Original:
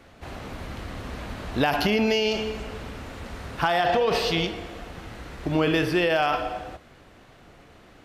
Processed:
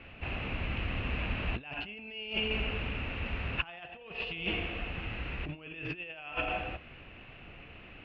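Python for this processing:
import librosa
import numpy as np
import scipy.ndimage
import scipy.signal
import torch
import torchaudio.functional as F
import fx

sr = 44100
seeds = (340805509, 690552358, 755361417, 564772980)

y = fx.over_compress(x, sr, threshold_db=-30.0, ratio=-0.5)
y = fx.ladder_lowpass(y, sr, hz=2800.0, resonance_pct=80)
y = fx.low_shelf(y, sr, hz=180.0, db=8.0)
y = y * 10.0 ** (2.5 / 20.0)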